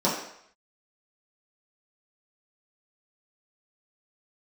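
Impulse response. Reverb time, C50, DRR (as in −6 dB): 0.70 s, 4.0 dB, −8.5 dB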